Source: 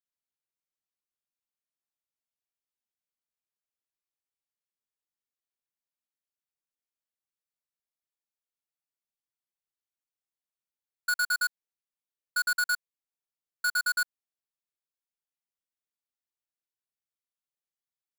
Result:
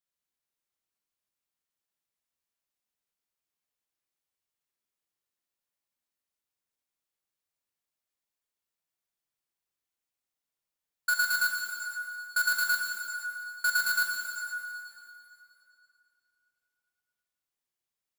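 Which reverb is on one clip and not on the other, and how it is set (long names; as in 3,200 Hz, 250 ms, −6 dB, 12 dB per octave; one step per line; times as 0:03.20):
dense smooth reverb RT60 2.9 s, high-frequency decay 0.85×, DRR 0 dB
level +1.5 dB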